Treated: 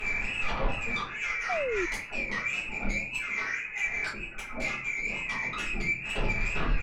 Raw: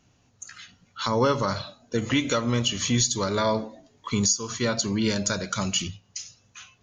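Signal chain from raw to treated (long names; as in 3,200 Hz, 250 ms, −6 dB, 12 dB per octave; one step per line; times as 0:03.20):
voice inversion scrambler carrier 2,600 Hz
tape wow and flutter 120 cents
gate with flip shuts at −28 dBFS, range −31 dB
downward compressor 12 to 1, threshold −58 dBFS, peak gain reduction 21.5 dB
on a send: echo with shifted repeats 273 ms, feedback 61%, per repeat −44 Hz, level −23.5 dB
on the sum: speech leveller 0.5 s
low-shelf EQ 170 Hz +8.5 dB
sine wavefolder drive 15 dB, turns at −41 dBFS
rectangular room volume 35 cubic metres, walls mixed, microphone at 1.4 metres
0:01.49–0:01.86: sound drawn into the spectrogram fall 330–770 Hz −36 dBFS
0:04.13–0:04.62: tilt shelving filter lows +6 dB, about 1,100 Hz
level +5.5 dB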